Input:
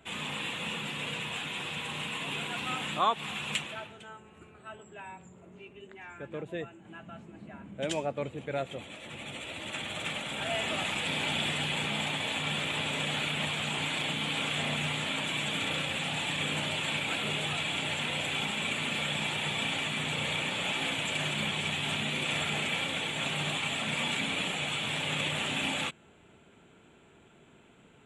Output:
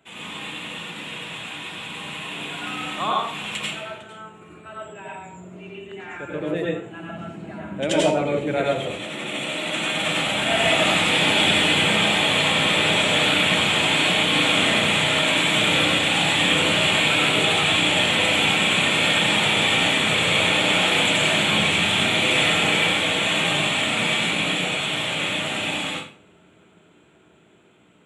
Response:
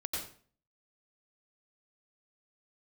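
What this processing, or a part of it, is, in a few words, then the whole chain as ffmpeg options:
far laptop microphone: -filter_complex "[0:a]asettb=1/sr,asplit=3[s0][s1][s2];[s0]atrim=end=8.894[s3];[s1]atrim=start=8.89:end=10.05,asetpts=PTS-STARTPTS,afade=t=in:d=0.004:c=qsin,afade=t=out:st=1.156:d=0.004:c=qsin,highpass=f=140:w=0.5412,highpass=f=140:w=1.3066[s4];[s2]atrim=start=10.046[s5];[s3][s4]acrossfade=d=0.004:c1=hsin:c2=qsin[s6];[s6][s5]acrossfade=d=0.004:c1=qsin:c2=hsin[s7];[1:a]atrim=start_sample=2205[s8];[s7][s8]afir=irnorm=-1:irlink=0,highpass=110,dynaudnorm=f=750:g=13:m=3.55"

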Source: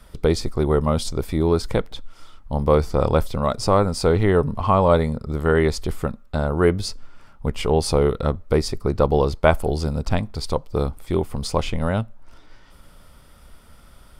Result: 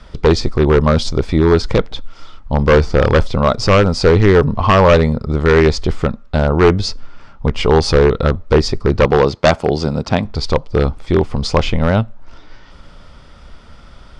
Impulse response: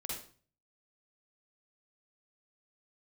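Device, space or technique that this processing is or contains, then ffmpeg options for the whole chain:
synthesiser wavefolder: -filter_complex "[0:a]asettb=1/sr,asplit=3[s0][s1][s2];[s0]atrim=end=9.054[s3];[s1]atrim=start=9.05:end=10.25,asetpts=PTS-STARTPTS,afade=t=in:d=0.004:c=qsin,afade=t=out:st=1.196:d=0.004:c=qsin,highpass=130[s4];[s2]atrim=start=10.246[s5];[s3][s4]acrossfade=d=0.004:c1=hsin:c2=qsin[s6];[s6][s5]acrossfade=d=0.004:c1=qsin:c2=hsin,aeval=exprs='0.282*(abs(mod(val(0)/0.282+3,4)-2)-1)':c=same,lowpass=f=6200:w=0.5412,lowpass=f=6200:w=1.3066,volume=2.66"

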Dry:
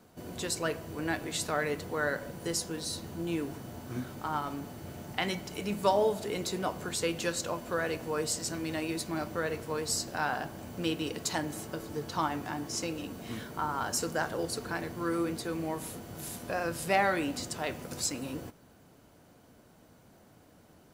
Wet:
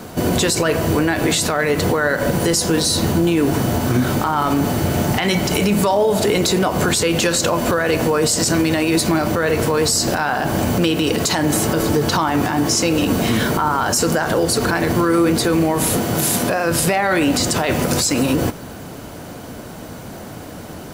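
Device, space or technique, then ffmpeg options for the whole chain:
loud club master: -filter_complex "[0:a]acompressor=threshold=0.0178:ratio=2.5,asoftclip=type=hard:threshold=0.0668,alimiter=level_in=42.2:limit=0.891:release=50:level=0:latency=1,asettb=1/sr,asplit=3[s0][s1][s2];[s0]atrim=end=15.974[s3];[s1]atrim=start=15.97:end=16.71,asetpts=PTS-STARTPTS,afade=t=in:d=0.004:c=qsin,afade=t=out:st=0.736:d=0.004:c=qsin,highpass=110[s4];[s2]atrim=start=16.706[s5];[s3][s4]acrossfade=d=0.004:c1=hsin:c2=qsin[s6];[s6][s5]acrossfade=d=0.004:c1=qsin:c2=hsin,volume=0.447"

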